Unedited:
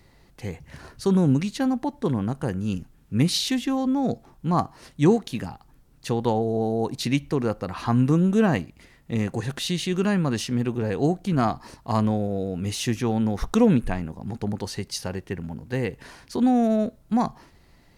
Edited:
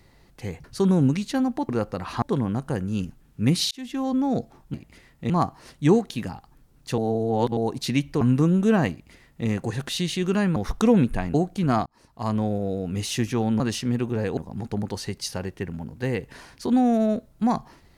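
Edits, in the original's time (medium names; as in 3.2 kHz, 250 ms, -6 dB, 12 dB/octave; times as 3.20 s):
0.64–0.90 s: delete
3.44–3.84 s: fade in
6.15–6.74 s: reverse
7.38–7.91 s: move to 1.95 s
8.61–9.17 s: copy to 4.47 s
10.26–11.03 s: swap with 13.29–14.07 s
11.55–12.21 s: fade in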